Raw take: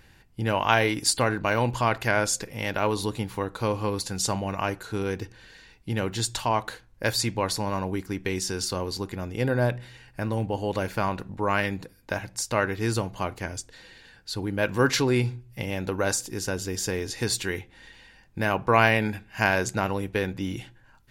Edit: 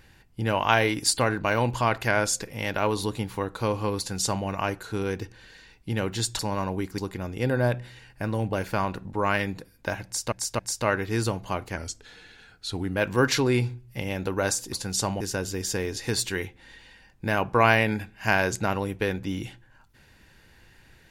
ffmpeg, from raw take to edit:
-filter_complex "[0:a]asplit=10[a][b][c][d][e][f][g][h][i][j];[a]atrim=end=6.392[k];[b]atrim=start=7.538:end=8.132[l];[c]atrim=start=8.958:end=10.512[m];[d]atrim=start=10.768:end=12.562[n];[e]atrim=start=12.288:end=12.562[o];[f]atrim=start=12.288:end=13.474[p];[g]atrim=start=13.47:end=14.58,asetpts=PTS-STARTPTS,asetrate=41013,aresample=44100,atrim=end_sample=52635,asetpts=PTS-STARTPTS[q];[h]atrim=start=14.576:end=16.342[r];[i]atrim=start=3.978:end=4.462[s];[j]atrim=start=16.338[t];[k][l]acrossfade=d=0.004:c1=hsin:c2=hsin[u];[u][m]acrossfade=d=0.004:c1=hsin:c2=hsin[v];[v][n]acrossfade=d=0.004:c1=hsin:c2=hsin[w];[w][o]acrossfade=d=0.004:c1=hsin:c2=hsin[x];[x][p]acrossfade=d=0.004:c1=hsin:c2=hsin[y];[y][q]acrossfade=d=0.004:c1=hsin:c2=hsin[z];[z][r]acrossfade=d=0.004:c1=hsin:c2=hsin[aa];[aa][s]acrossfade=d=0.004:c1=hsin:c2=hsin[ab];[ab][t]acrossfade=d=0.004:c1=hsin:c2=hsin"

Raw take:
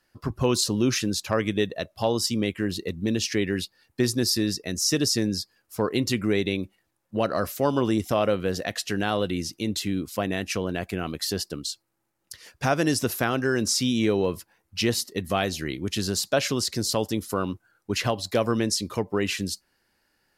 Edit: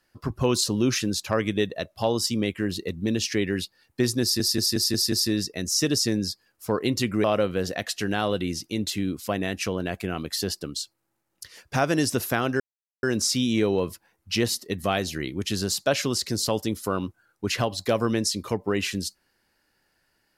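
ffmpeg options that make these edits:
-filter_complex "[0:a]asplit=8[a][b][c][d][e][f][g][h];[a]atrim=end=4.402[i];[b]atrim=start=4.218:end=4.402[j];[c]atrim=start=4.218:end=4.402[k];[d]atrim=start=4.218:end=4.402[l];[e]atrim=start=4.218:end=4.402[m];[f]atrim=start=4.218:end=6.342[n];[g]atrim=start=8.128:end=13.49,asetpts=PTS-STARTPTS,afade=t=out:st=5.358:d=0.004:c=hsin,apad=pad_dur=0.43[o];[h]atrim=start=13.49,asetpts=PTS-STARTPTS,afade=t=in:d=0.004:c=hsin[p];[i][j]acrossfade=d=0.004:c1=hsin:c2=hsin[q];[q][k]acrossfade=d=0.004:c1=hsin:c2=hsin[r];[r][l]acrossfade=d=0.004:c1=hsin:c2=hsin[s];[s][m]acrossfade=d=0.004:c1=hsin:c2=hsin[t];[t][n]acrossfade=d=0.004:c1=hsin:c2=hsin[u];[o][p]concat=n=2:v=0:a=1[v];[u][v]acrossfade=d=0.004:c1=hsin:c2=hsin"

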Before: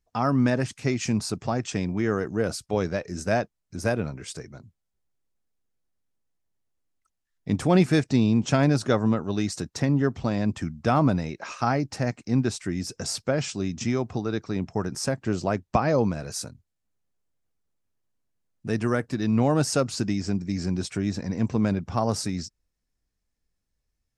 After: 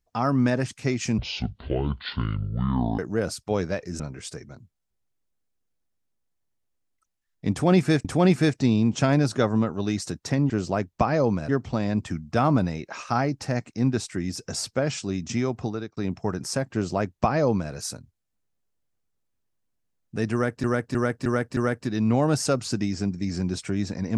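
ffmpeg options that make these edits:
-filter_complex "[0:a]asplit=12[a][b][c][d][e][f][g][h][i][j][k][l];[a]atrim=end=1.184[m];[b]atrim=start=1.18:end=2.21,asetpts=PTS-STARTPTS,asetrate=25137,aresample=44100,atrim=end_sample=79689,asetpts=PTS-STARTPTS[n];[c]atrim=start=2.206:end=3.222[o];[d]atrim=start=4.028:end=8.082[p];[e]atrim=start=7.548:end=10.002[q];[f]atrim=start=15.238:end=16.232[r];[g]atrim=start=9.998:end=14.48,asetpts=PTS-STARTPTS,afade=t=out:st=4.212:d=0.27[s];[h]atrim=start=14.48:end=19.152,asetpts=PTS-STARTPTS,afade=t=in:d=0.004:c=hsin[t];[i]atrim=start=18.838:end=19.152[u];[j]atrim=start=18.838:end=19.152[v];[k]atrim=start=18.838:end=19.152[w];[l]atrim=start=18.838[x];[m][n]acrossfade=d=0.004:c1=hsin:c2=hsin[y];[y][o]acrossfade=d=0.004:c1=hsin:c2=hsin[z];[z][p]acrossfade=d=0.004:c1=hsin:c2=hsin[aa];[aa][q]acrossfade=d=0.004:c1=hsin:c2=hsin[ab];[ab][r]acrossfade=d=0.004:c1=hsin:c2=hsin[ac];[s][t]concat=n=2:v=0:a=1[ad];[ac][ad]acrossfade=d=0.004:c1=hsin:c2=hsin[ae];[ae][u]acrossfade=d=0.004:c1=hsin:c2=hsin[af];[af][v]acrossfade=d=0.004:c1=hsin:c2=hsin[ag];[ag][w]acrossfade=d=0.004:c1=hsin:c2=hsin[ah];[ah][x]acrossfade=d=0.004:c1=hsin:c2=hsin"

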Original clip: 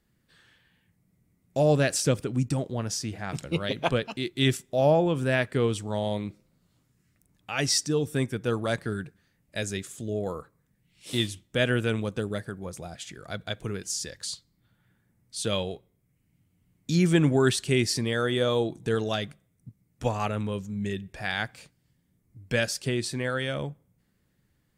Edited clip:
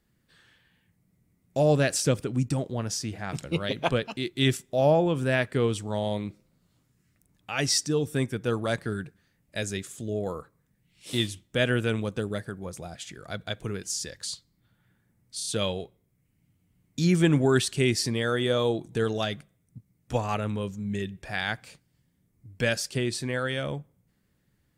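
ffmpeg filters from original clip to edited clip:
-filter_complex "[0:a]asplit=4[a][b][c][d];[a]atrim=end=15.402[e];[b]atrim=start=15.368:end=15.402[f];[c]atrim=start=15.368:end=15.402[g];[d]atrim=start=15.368[h];[e][f]acrossfade=d=0.004:c1=hsin:c2=hsin[i];[i][g]acrossfade=d=0.004:c1=hsin:c2=hsin[j];[j][h]acrossfade=d=0.004:c1=hsin:c2=hsin"

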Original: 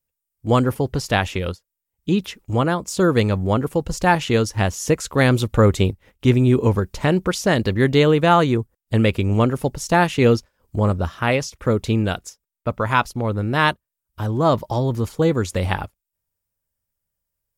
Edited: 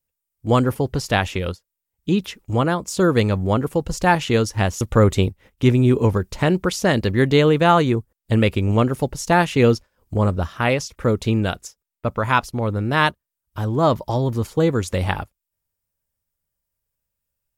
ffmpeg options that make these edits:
-filter_complex "[0:a]asplit=2[a][b];[a]atrim=end=4.812[c];[b]atrim=start=5.428[d];[c][d]acrossfade=d=0.004:c1=hsin:c2=hsin"

